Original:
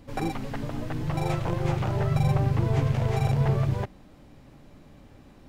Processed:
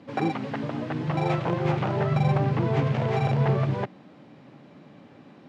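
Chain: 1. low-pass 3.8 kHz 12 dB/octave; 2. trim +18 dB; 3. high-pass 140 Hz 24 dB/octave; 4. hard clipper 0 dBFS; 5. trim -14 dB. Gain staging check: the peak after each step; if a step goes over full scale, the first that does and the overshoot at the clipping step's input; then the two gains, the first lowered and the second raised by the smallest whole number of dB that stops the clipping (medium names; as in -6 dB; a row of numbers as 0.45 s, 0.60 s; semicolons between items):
-12.5 dBFS, +5.5 dBFS, +3.5 dBFS, 0.0 dBFS, -14.0 dBFS; step 2, 3.5 dB; step 2 +14 dB, step 5 -10 dB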